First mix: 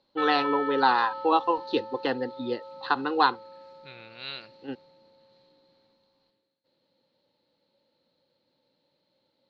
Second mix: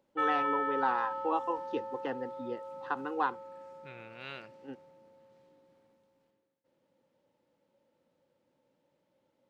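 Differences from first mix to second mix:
first voice -8.5 dB; master: remove synth low-pass 4200 Hz, resonance Q 16

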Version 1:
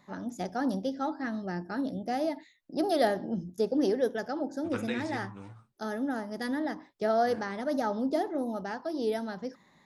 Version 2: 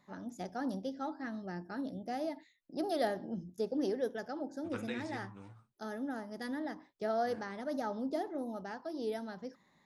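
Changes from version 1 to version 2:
first voice -7.0 dB; second voice -6.0 dB

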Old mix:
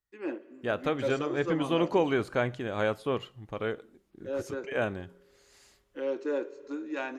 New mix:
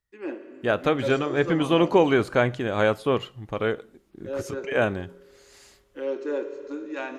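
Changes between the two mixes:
first voice: send +10.0 dB; second voice +7.0 dB

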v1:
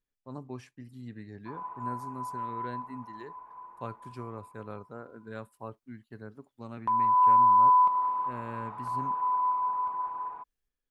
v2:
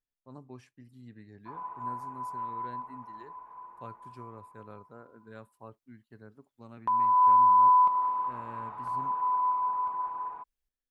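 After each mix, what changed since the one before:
speech -6.5 dB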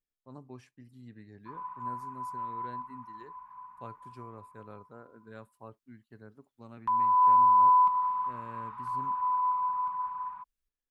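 background: add elliptic band-stop 220–990 Hz, stop band 40 dB

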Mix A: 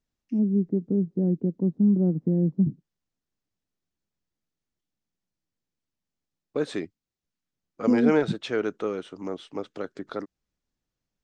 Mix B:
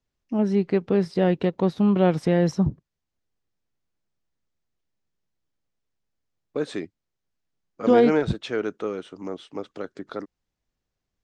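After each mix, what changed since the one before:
first voice: remove Butterworth band-pass 220 Hz, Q 1.2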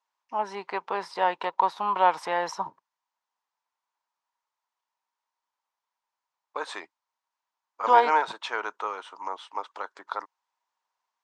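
master: add resonant high-pass 950 Hz, resonance Q 7.3

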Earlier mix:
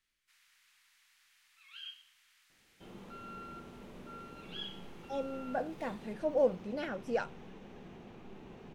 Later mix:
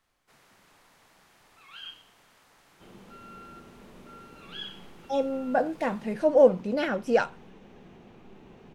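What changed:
speech +10.5 dB; first sound: remove ladder high-pass 1500 Hz, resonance 20%

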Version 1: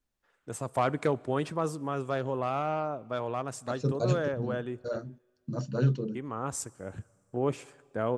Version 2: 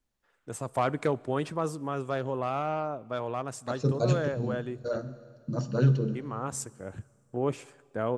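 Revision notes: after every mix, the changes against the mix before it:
second voice: send on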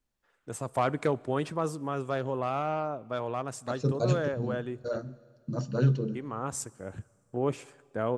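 second voice: send -7.0 dB

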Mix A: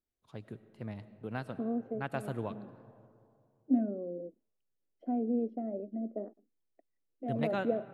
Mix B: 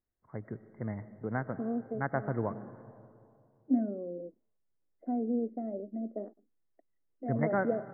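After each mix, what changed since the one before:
first voice +4.5 dB; master: add brick-wall FIR low-pass 2200 Hz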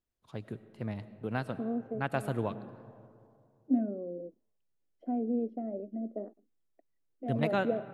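master: remove brick-wall FIR low-pass 2200 Hz

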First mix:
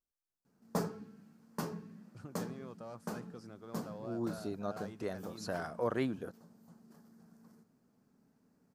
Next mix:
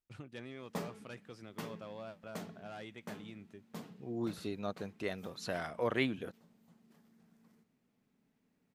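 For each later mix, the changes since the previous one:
first voice: entry -2.05 s; background -6.0 dB; master: add band shelf 2700 Hz +10.5 dB 1.2 oct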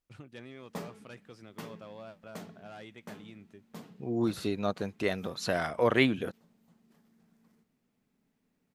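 second voice +8.0 dB

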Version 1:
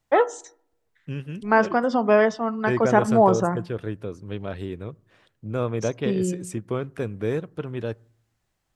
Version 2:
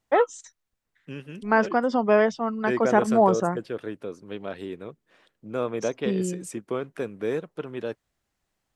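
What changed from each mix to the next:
second voice: add HPF 230 Hz 12 dB/oct; reverb: off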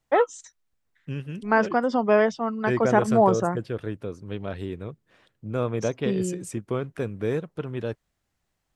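second voice: remove HPF 230 Hz 12 dB/oct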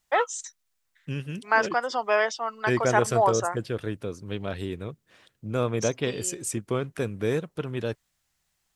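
first voice: add HPF 690 Hz 12 dB/oct; master: add high shelf 2900 Hz +9.5 dB

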